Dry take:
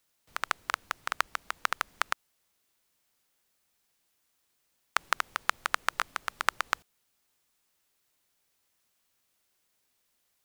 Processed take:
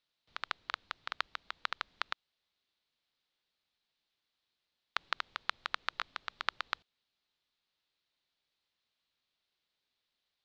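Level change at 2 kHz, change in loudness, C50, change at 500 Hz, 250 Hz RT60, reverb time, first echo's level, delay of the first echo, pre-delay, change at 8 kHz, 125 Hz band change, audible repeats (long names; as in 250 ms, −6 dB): −7.5 dB, −7.0 dB, no reverb audible, −9.0 dB, no reverb audible, no reverb audible, no echo audible, no echo audible, no reverb audible, −19.0 dB, can't be measured, no echo audible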